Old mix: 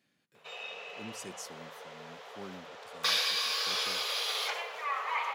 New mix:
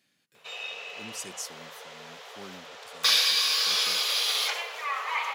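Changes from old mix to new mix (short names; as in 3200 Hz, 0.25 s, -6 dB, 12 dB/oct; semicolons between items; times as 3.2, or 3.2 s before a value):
speech: send off; master: add high shelf 2200 Hz +9.5 dB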